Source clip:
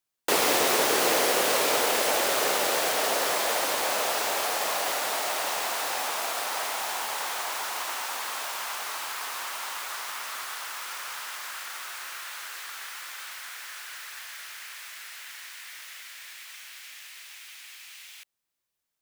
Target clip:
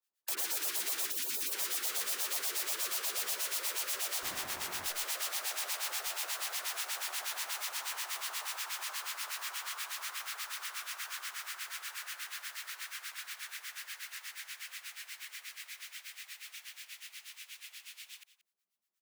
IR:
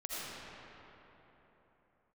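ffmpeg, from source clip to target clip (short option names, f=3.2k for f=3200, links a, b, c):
-filter_complex "[0:a]acrossover=split=690|970[a][b][c];[b]asoftclip=type=tanh:threshold=-39dB[d];[a][d][c]amix=inputs=3:normalize=0,equalizer=f=130:t=o:w=2.5:g=-8.5,afreqshift=180,acrossover=split=1100[e][f];[e]aeval=exprs='val(0)*(1-1/2+1/2*cos(2*PI*8.3*n/s))':c=same[g];[f]aeval=exprs='val(0)*(1-1/2-1/2*cos(2*PI*8.3*n/s))':c=same[h];[g][h]amix=inputs=2:normalize=0,asettb=1/sr,asplit=3[i][j][k];[i]atrim=end=4.234[l];[j]atrim=start=4.23:end=4.86,asetpts=PTS-STARTPTS,afade=t=in:d=0.004:c=qsin,afade=t=out:st=0.626:d=0.004:c=qsin,aeval=exprs='max(val(0),0)':c=same[m];[k]atrim=start=4.856[n];[l][m]acrossfade=d=0.004:c1=hsin:c2=qsin[o];[o][n]acrossfade=d=0.004:c1=qsin:c2=hsin,equalizer=f=370:t=o:w=0.23:g=8,asplit=2[p][q];[q]aecho=0:1:179:0.15[r];[p][r]amix=inputs=2:normalize=0,asplit=3[s][t][u];[s]afade=t=out:st=1.1:d=0.02[v];[t]acontrast=80,afade=t=in:st=1.1:d=0.02,afade=t=out:st=1.51:d=0.02[w];[u]afade=t=in:st=1.51:d=0.02[x];[v][w][x]amix=inputs=3:normalize=0,afftfilt=real='re*lt(hypot(re,im),0.0355)':imag='im*lt(hypot(re,im),0.0355)':win_size=1024:overlap=0.75"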